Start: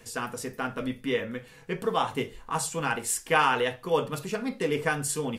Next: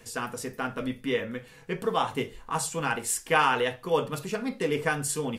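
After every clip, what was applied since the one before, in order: no audible change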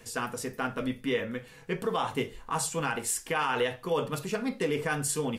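peak limiter -18.5 dBFS, peak gain reduction 9.5 dB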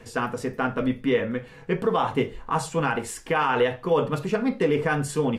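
low-pass 1.7 kHz 6 dB/octave; trim +7.5 dB

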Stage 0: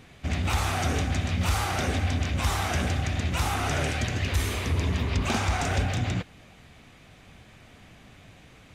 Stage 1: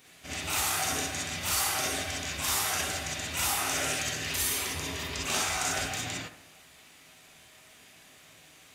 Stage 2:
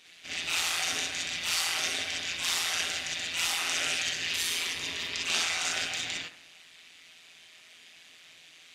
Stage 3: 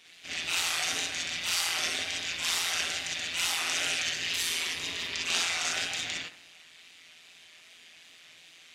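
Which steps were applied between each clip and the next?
RIAA curve recording; bucket-brigade echo 71 ms, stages 1024, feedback 55%, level -12 dB; gated-style reverb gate 80 ms rising, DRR -3 dB; trim -8.5 dB
frequency weighting D; AM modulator 170 Hz, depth 50%; treble shelf 8.7 kHz -7.5 dB; trim -3 dB
wow and flutter 49 cents

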